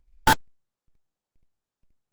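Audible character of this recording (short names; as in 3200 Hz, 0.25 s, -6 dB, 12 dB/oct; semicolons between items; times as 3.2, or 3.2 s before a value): chopped level 2.1 Hz, depth 65%, duty 85%; aliases and images of a low sample rate 2400 Hz, jitter 20%; Opus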